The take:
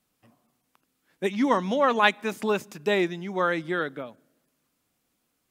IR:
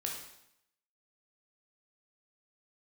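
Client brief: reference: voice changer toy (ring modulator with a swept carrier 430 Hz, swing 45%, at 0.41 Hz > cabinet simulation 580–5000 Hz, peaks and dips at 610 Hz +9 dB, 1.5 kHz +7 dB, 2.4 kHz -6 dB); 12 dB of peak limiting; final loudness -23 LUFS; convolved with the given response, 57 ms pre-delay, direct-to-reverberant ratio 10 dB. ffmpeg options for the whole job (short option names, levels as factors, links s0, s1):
-filter_complex "[0:a]alimiter=limit=0.168:level=0:latency=1,asplit=2[s0][s1];[1:a]atrim=start_sample=2205,adelay=57[s2];[s1][s2]afir=irnorm=-1:irlink=0,volume=0.266[s3];[s0][s3]amix=inputs=2:normalize=0,aeval=exprs='val(0)*sin(2*PI*430*n/s+430*0.45/0.41*sin(2*PI*0.41*n/s))':c=same,highpass=580,equalizer=f=610:t=q:w=4:g=9,equalizer=f=1500:t=q:w=4:g=7,equalizer=f=2400:t=q:w=4:g=-6,lowpass=f=5000:w=0.5412,lowpass=f=5000:w=1.3066,volume=2.24"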